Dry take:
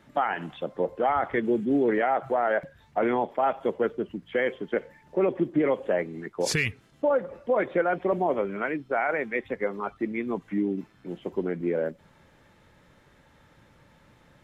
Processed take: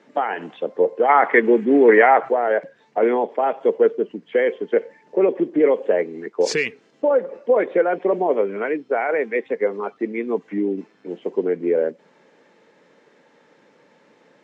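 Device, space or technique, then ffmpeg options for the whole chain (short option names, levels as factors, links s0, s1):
television speaker: -filter_complex "[0:a]asplit=3[s0][s1][s2];[s0]afade=t=out:st=1.08:d=0.02[s3];[s1]equalizer=f=250:t=o:w=1:g=3,equalizer=f=1000:t=o:w=1:g=9,equalizer=f=2000:t=o:w=1:g=11,afade=t=in:st=1.08:d=0.02,afade=t=out:st=2.28:d=0.02[s4];[s2]afade=t=in:st=2.28:d=0.02[s5];[s3][s4][s5]amix=inputs=3:normalize=0,highpass=f=210:w=0.5412,highpass=f=210:w=1.3066,equalizer=f=450:t=q:w=4:g=9,equalizer=f=1300:t=q:w=4:g=-4,equalizer=f=3500:t=q:w=4:g=-4,lowpass=f=7000:w=0.5412,lowpass=f=7000:w=1.3066,volume=1.5"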